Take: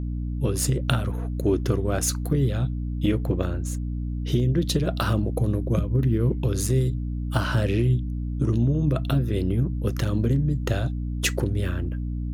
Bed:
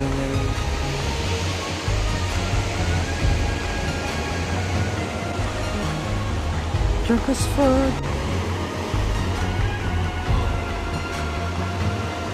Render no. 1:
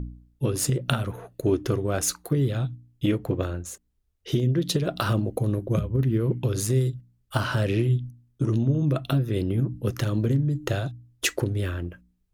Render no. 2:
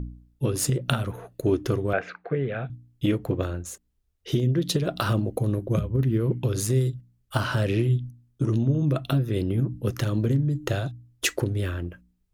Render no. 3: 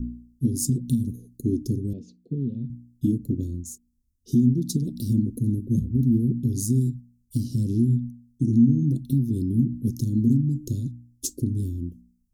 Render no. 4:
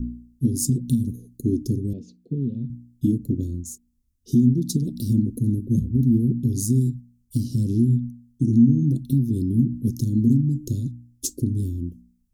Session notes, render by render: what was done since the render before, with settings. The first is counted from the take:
hum removal 60 Hz, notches 5
0:01.93–0:02.70: loudspeaker in its box 180–2,600 Hz, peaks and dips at 310 Hz −9 dB, 460 Hz +5 dB, 690 Hz +6 dB, 990 Hz −4 dB, 1,600 Hz +8 dB, 2,300 Hz +8 dB
inverse Chebyshev band-stop filter 850–2,000 Hz, stop band 70 dB; parametric band 240 Hz +15 dB 0.23 octaves
level +2 dB

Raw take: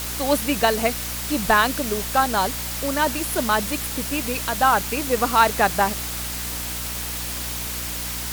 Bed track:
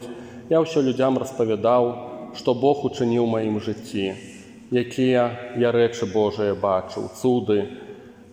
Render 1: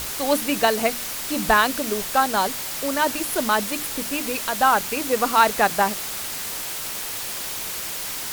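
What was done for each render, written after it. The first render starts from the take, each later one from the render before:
mains-hum notches 60/120/180/240/300 Hz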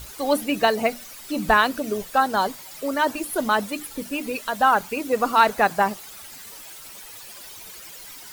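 broadband denoise 14 dB, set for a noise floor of −30 dBFS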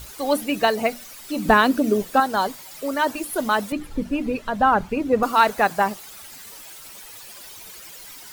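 0:01.45–0:02.20: parametric band 270 Hz +10 dB 1.6 octaves
0:03.72–0:05.23: RIAA equalisation playback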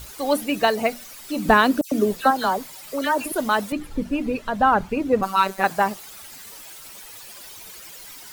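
0:01.81–0:03.32: all-pass dispersion lows, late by 108 ms, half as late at 2,600 Hz
0:05.21–0:05.64: phases set to zero 192 Hz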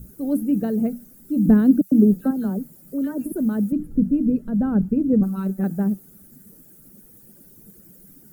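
drawn EQ curve 100 Hz 0 dB, 190 Hz +13 dB, 450 Hz −4 dB, 1,000 Hz −26 dB, 1,500 Hz −18 dB, 2,300 Hz −29 dB, 4,000 Hz −29 dB, 13,000 Hz −6 dB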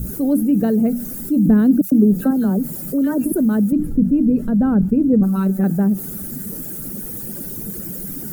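envelope flattener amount 50%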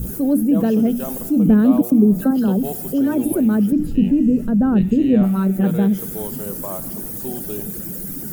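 mix in bed track −11 dB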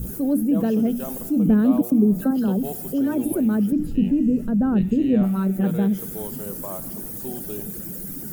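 level −4 dB

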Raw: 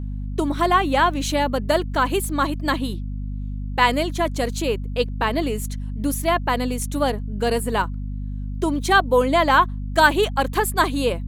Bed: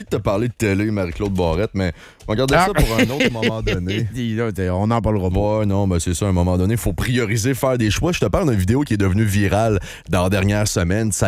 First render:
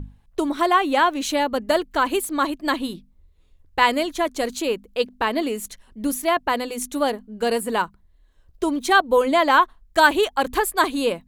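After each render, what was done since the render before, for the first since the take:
mains-hum notches 50/100/150/200/250 Hz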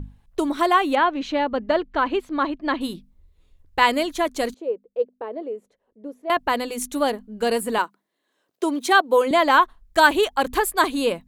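0:00.95–0:02.81: high-frequency loss of the air 230 metres
0:04.54–0:06.30: resonant band-pass 490 Hz, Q 3.5
0:07.78–0:09.31: high-pass filter 250 Hz 24 dB per octave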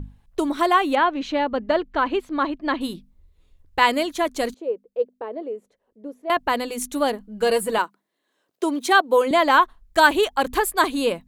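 0:03.79–0:04.22: high-pass filter 69 Hz 6 dB per octave
0:07.20–0:07.77: comb filter 6.1 ms, depth 57%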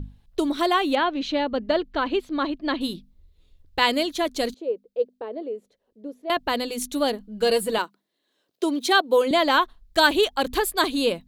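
octave-band graphic EQ 1,000/2,000/4,000/8,000 Hz −5/−3/+6/−3 dB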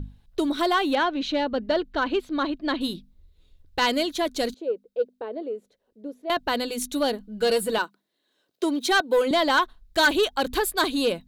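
hollow resonant body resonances 1,500/3,800 Hz, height 7 dB
soft clipping −13 dBFS, distortion −15 dB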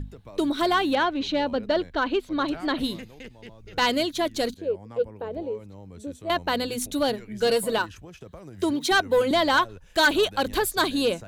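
mix in bed −26 dB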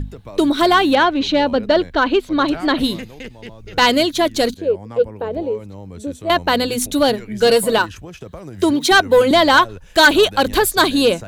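level +9 dB

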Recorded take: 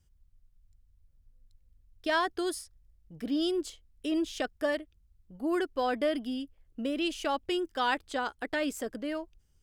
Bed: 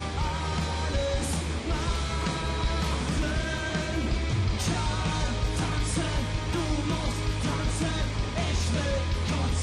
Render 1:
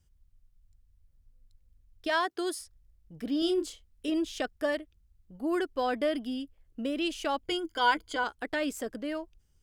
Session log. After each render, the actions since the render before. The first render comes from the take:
0:02.08–0:02.59: high-pass filter 400 Hz → 170 Hz
0:03.39–0:04.10: double-tracking delay 30 ms −6 dB
0:07.44–0:08.24: EQ curve with evenly spaced ripples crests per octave 1.8, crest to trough 13 dB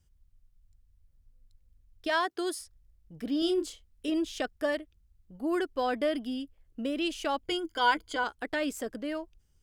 no processing that can be heard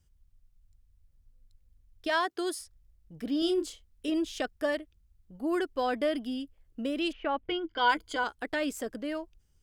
0:07.11–0:07.88: low-pass filter 2,100 Hz → 4,700 Hz 24 dB per octave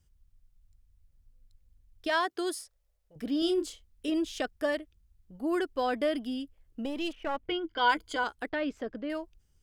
0:02.60–0:03.16: low shelf with overshoot 370 Hz −13 dB, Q 3
0:06.85–0:07.40: gain on one half-wave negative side −7 dB
0:08.49–0:09.10: high-frequency loss of the air 230 metres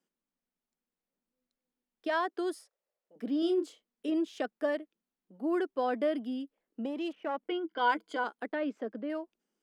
elliptic high-pass filter 200 Hz, stop band 40 dB
high-shelf EQ 2,700 Hz −12 dB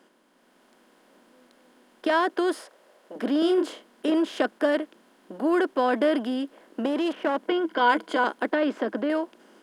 compressor on every frequency bin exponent 0.6
automatic gain control gain up to 5.5 dB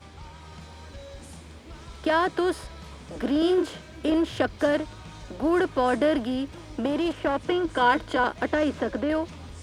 mix in bed −15 dB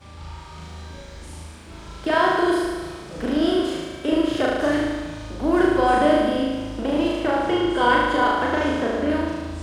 flutter between parallel walls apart 6.4 metres, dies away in 1.4 s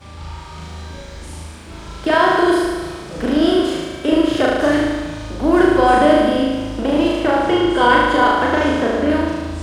level +5.5 dB
brickwall limiter −2 dBFS, peak gain reduction 1.5 dB

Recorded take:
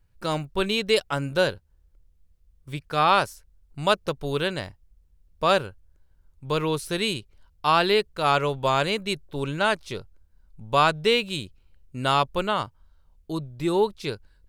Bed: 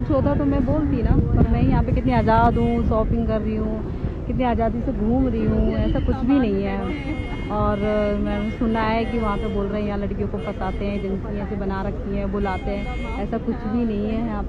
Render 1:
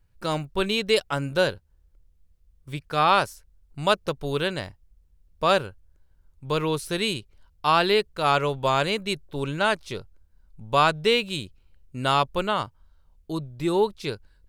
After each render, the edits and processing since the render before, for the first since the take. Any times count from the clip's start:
no processing that can be heard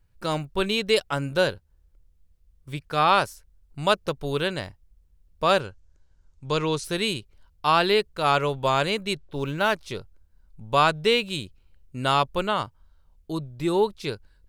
0:05.60–0:06.84: low-pass with resonance 6,600 Hz, resonance Q 2.1
0:09.14–0:09.75: linearly interpolated sample-rate reduction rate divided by 3×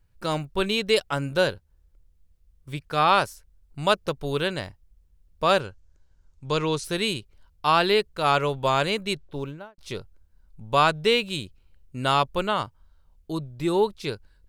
0:09.22–0:09.78: fade out and dull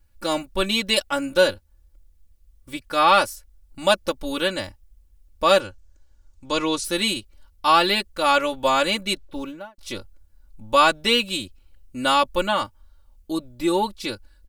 high-shelf EQ 5,600 Hz +7 dB
comb filter 3.5 ms, depth 94%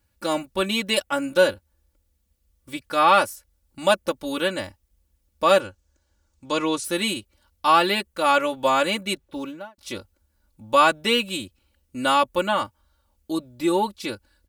high-pass filter 84 Hz 12 dB per octave
dynamic equaliser 4,600 Hz, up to −6 dB, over −38 dBFS, Q 1.3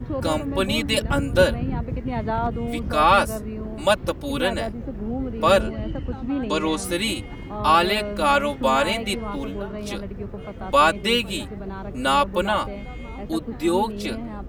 mix in bed −8 dB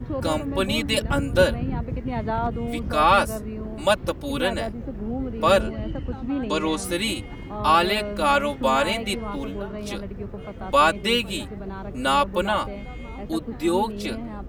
level −1 dB

